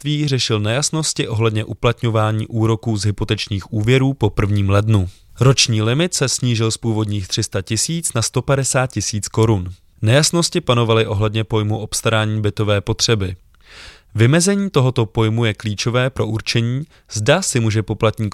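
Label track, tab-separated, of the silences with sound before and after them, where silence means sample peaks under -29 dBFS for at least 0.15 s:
5.100000	5.380000	silence
9.720000	10.030000	silence
13.340000	13.750000	silence
13.890000	14.150000	silence
16.840000	17.110000	silence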